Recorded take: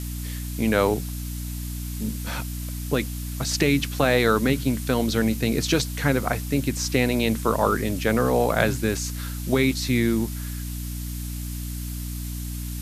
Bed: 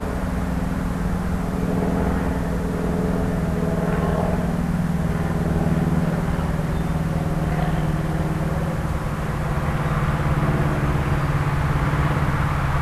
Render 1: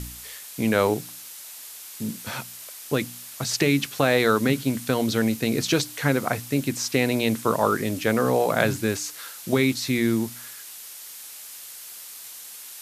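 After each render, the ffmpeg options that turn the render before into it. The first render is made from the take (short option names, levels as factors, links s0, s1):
-af "bandreject=f=60:t=h:w=4,bandreject=f=120:t=h:w=4,bandreject=f=180:t=h:w=4,bandreject=f=240:t=h:w=4,bandreject=f=300:t=h:w=4"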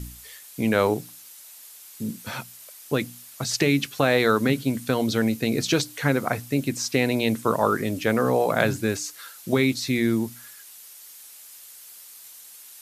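-af "afftdn=nr=7:nf=-41"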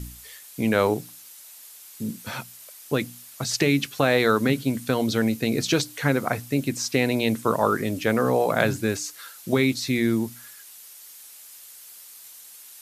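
-af anull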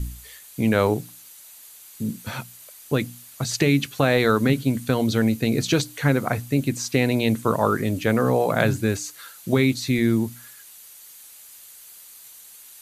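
-af "lowshelf=f=120:g=11,bandreject=f=5300:w=12"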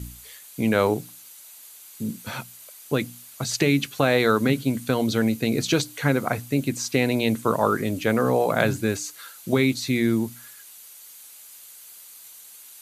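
-af "highpass=f=150:p=1,bandreject=f=1800:w=25"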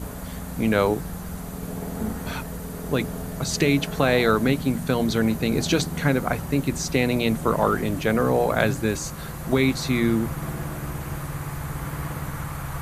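-filter_complex "[1:a]volume=0.299[s0];[0:a][s0]amix=inputs=2:normalize=0"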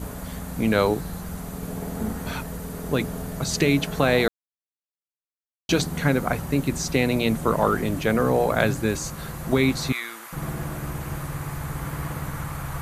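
-filter_complex "[0:a]asettb=1/sr,asplit=3[s0][s1][s2];[s0]atrim=end=0.694[s3];[s1]atrim=start=0.69:end=1.21,asetpts=PTS-STARTPTS,afade=t=in:d=0.004:c=qsin,afade=t=out:st=0.516:d=0.004:c=qsin,equalizer=f=4100:w=7.6:g=7[s4];[s2]atrim=start=1.206[s5];[s3][s4]acrossfade=d=0.004:c1=hsin:c2=qsin[s6];[s6][s5]acrossfade=d=0.004:c1=qsin:c2=hsin,asettb=1/sr,asplit=3[s7][s8][s9];[s7]atrim=end=9.924[s10];[s8]atrim=start=9.92:end=10.33,asetpts=PTS-STARTPTS,afade=t=in:d=0.004:c=qsin,afade=t=out:st=0.406:d=0.004:c=qsin,highpass=1200[s11];[s9]atrim=start=10.326[s12];[s10][s11]acrossfade=d=0.004:c1=hsin:c2=qsin[s13];[s13][s12]acrossfade=d=0.004:c1=qsin:c2=hsin,asplit=3[s14][s15][s16];[s14]atrim=end=4.28,asetpts=PTS-STARTPTS,afade=t=out:st=4.276:d=0.004:c=hsin[s17];[s15]atrim=start=4.28:end=5.69,asetpts=PTS-STARTPTS,volume=0[s18];[s16]atrim=start=5.69,asetpts=PTS-STARTPTS,afade=t=in:d=0.004:c=hsin[s19];[s17][s18][s19]concat=n=3:v=0:a=1"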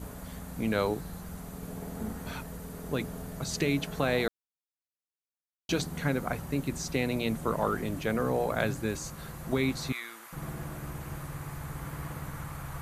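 -af "volume=0.398"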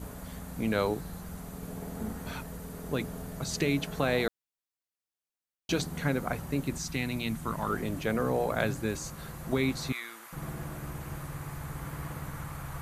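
-filter_complex "[0:a]asettb=1/sr,asplit=3[s0][s1][s2];[s0]atrim=end=6.784[s3];[s1]atrim=start=6.78:end=7.7,asetpts=PTS-STARTPTS,afade=t=in:d=0.004:c=qsin,afade=t=out:st=0.916:d=0.004:c=qsin,equalizer=f=500:w=1.4:g=-12[s4];[s2]atrim=start=7.696[s5];[s3][s4]acrossfade=d=0.004:c1=hsin:c2=qsin[s6];[s6][s5]acrossfade=d=0.004:c1=qsin:c2=hsin"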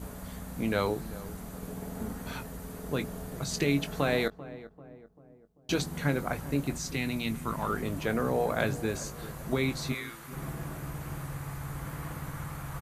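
-filter_complex "[0:a]asplit=2[s0][s1];[s1]adelay=21,volume=0.282[s2];[s0][s2]amix=inputs=2:normalize=0,asplit=2[s3][s4];[s4]adelay=391,lowpass=f=1100:p=1,volume=0.168,asplit=2[s5][s6];[s6]adelay=391,lowpass=f=1100:p=1,volume=0.51,asplit=2[s7][s8];[s8]adelay=391,lowpass=f=1100:p=1,volume=0.51,asplit=2[s9][s10];[s10]adelay=391,lowpass=f=1100:p=1,volume=0.51,asplit=2[s11][s12];[s12]adelay=391,lowpass=f=1100:p=1,volume=0.51[s13];[s3][s5][s7][s9][s11][s13]amix=inputs=6:normalize=0"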